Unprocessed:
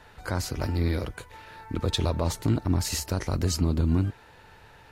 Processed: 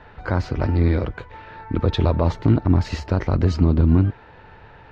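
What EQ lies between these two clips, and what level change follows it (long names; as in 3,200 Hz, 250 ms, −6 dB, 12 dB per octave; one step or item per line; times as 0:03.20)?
high-frequency loss of the air 200 metres
high-shelf EQ 4,400 Hz −10.5 dB
+8.0 dB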